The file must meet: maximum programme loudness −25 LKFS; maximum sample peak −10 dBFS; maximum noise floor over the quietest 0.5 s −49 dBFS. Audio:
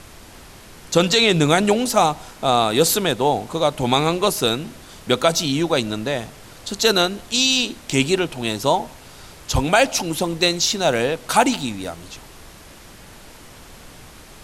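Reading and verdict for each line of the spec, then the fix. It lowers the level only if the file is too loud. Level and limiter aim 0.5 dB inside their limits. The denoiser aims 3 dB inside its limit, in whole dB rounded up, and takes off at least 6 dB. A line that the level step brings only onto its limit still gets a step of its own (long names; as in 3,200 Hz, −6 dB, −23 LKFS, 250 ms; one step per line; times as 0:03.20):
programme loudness −19.0 LKFS: out of spec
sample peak −3.5 dBFS: out of spec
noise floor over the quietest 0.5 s −43 dBFS: out of spec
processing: level −6.5 dB
brickwall limiter −10.5 dBFS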